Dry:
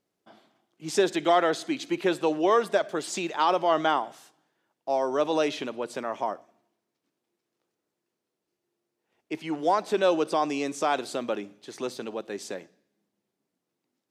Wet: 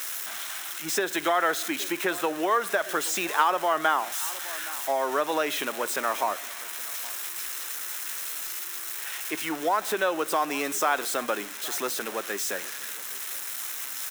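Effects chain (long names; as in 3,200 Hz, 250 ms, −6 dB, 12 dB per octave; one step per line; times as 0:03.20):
spike at every zero crossing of −24.5 dBFS
slap from a distant wall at 140 metres, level −22 dB
downward compressor, threshold −24 dBFS, peak gain reduction 8 dB
high-pass filter 250 Hz 6 dB per octave
parametric band 1,500 Hz +11 dB 1.4 octaves
notch filter 4,600 Hz, Q 8.9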